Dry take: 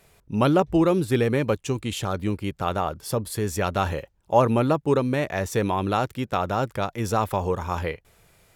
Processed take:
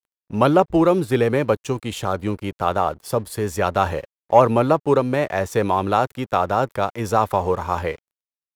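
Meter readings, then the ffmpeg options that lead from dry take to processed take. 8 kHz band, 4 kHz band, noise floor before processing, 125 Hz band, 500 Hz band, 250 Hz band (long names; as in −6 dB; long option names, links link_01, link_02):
−0.5 dB, +0.5 dB, −63 dBFS, +0.5 dB, +5.0 dB, +2.0 dB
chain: -filter_complex "[0:a]acrossover=split=460|1400[link_01][link_02][link_03];[link_02]acontrast=71[link_04];[link_01][link_04][link_03]amix=inputs=3:normalize=0,aeval=exprs='sgn(val(0))*max(abs(val(0))-0.00531,0)':channel_layout=same,volume=1dB"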